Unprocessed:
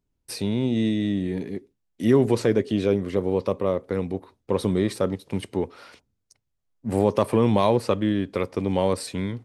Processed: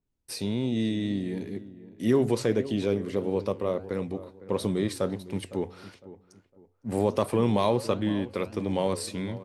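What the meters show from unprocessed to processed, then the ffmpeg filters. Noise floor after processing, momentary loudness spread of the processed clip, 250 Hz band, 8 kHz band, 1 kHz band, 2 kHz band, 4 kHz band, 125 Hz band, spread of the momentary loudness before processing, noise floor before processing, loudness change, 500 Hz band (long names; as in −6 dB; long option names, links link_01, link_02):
−68 dBFS, 12 LU, −4.5 dB, −1.0 dB, −4.5 dB, −4.0 dB, −2.0 dB, −4.5 dB, 11 LU, −77 dBFS, −4.5 dB, −4.5 dB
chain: -filter_complex "[0:a]bandreject=frequency=45.93:width_type=h:width=4,bandreject=frequency=91.86:width_type=h:width=4,bandreject=frequency=137.79:width_type=h:width=4,flanger=delay=6.1:depth=7.2:regen=-85:speed=1.5:shape=triangular,asplit=2[link_01][link_02];[link_02]adelay=507,lowpass=frequency=1500:poles=1,volume=-16dB,asplit=2[link_03][link_04];[link_04]adelay=507,lowpass=frequency=1500:poles=1,volume=0.33,asplit=2[link_05][link_06];[link_06]adelay=507,lowpass=frequency=1500:poles=1,volume=0.33[link_07];[link_03][link_05][link_07]amix=inputs=3:normalize=0[link_08];[link_01][link_08]amix=inputs=2:normalize=0,adynamicequalizer=threshold=0.00355:dfrequency=3300:dqfactor=0.7:tfrequency=3300:tqfactor=0.7:attack=5:release=100:ratio=0.375:range=2:mode=boostabove:tftype=highshelf"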